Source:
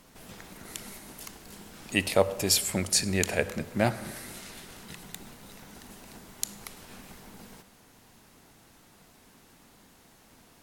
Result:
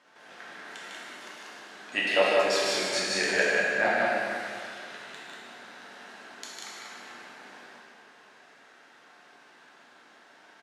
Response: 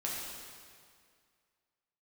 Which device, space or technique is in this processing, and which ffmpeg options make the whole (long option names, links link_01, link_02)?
station announcement: -filter_complex "[0:a]highpass=440,lowpass=4100,equalizer=frequency=1600:width_type=o:width=0.34:gain=9,aecho=1:1:151.6|189.5:0.631|0.631[link_01];[1:a]atrim=start_sample=2205[link_02];[link_01][link_02]afir=irnorm=-1:irlink=0,volume=-1.5dB"